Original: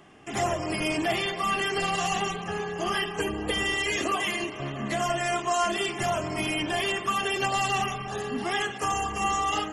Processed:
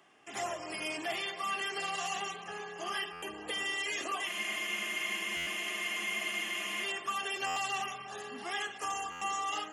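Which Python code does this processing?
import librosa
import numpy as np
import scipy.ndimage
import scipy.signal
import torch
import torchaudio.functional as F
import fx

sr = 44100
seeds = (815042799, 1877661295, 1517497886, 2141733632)

y = fx.highpass(x, sr, hz=730.0, slope=6)
y = fx.spec_freeze(y, sr, seeds[0], at_s=4.3, hold_s=2.53)
y = fx.buffer_glitch(y, sr, at_s=(3.12, 5.36, 7.46, 9.11), block=512, repeats=8)
y = F.gain(torch.from_numpy(y), -6.5).numpy()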